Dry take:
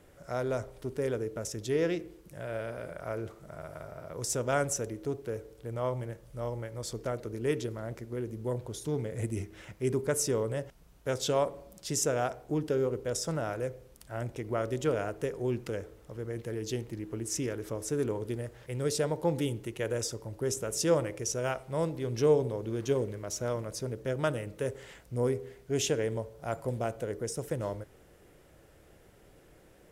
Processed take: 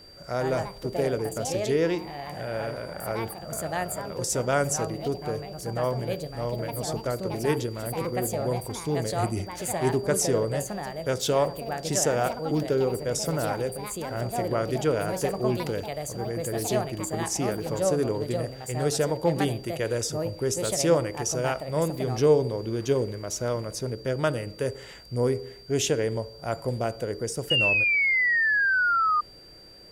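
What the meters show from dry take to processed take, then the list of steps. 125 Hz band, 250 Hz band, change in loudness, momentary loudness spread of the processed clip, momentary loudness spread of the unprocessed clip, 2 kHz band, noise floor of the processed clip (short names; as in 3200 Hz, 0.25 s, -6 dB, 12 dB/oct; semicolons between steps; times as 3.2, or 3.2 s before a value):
+5.0 dB, +5.5 dB, +6.5 dB, 11 LU, 10 LU, +16.0 dB, -45 dBFS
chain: echoes that change speed 0.165 s, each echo +4 st, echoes 2, each echo -6 dB; painted sound fall, 27.5–29.21, 1200–2900 Hz -27 dBFS; whine 4700 Hz -53 dBFS; gain +4.5 dB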